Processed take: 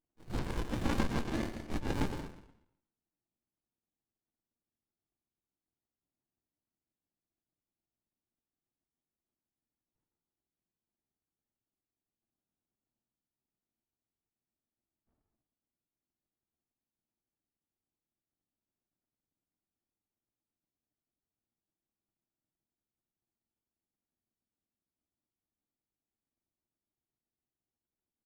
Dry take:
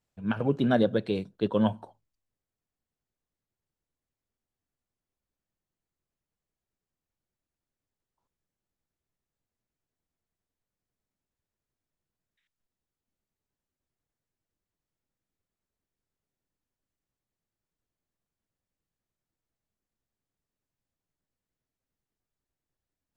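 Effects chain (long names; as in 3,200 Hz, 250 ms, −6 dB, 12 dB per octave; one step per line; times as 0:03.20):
frequency axis turned over on the octave scale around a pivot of 920 Hz
high-pass filter 300 Hz 24 dB per octave
tilt shelving filter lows +7 dB, about 1,400 Hz
leveller curve on the samples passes 1
gate on every frequency bin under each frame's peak −25 dB strong
tempo change 0.82×
multi-voice chorus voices 6, 0.66 Hz, delay 13 ms, depth 4.4 ms
single-tap delay 191 ms −20.5 dB
dense smooth reverb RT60 0.68 s, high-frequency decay 0.75×, pre-delay 85 ms, DRR 5 dB
windowed peak hold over 65 samples
level +3 dB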